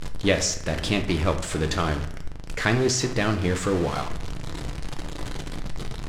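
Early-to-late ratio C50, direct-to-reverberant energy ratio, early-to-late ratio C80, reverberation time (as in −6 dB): 10.5 dB, 6.0 dB, 13.5 dB, 0.75 s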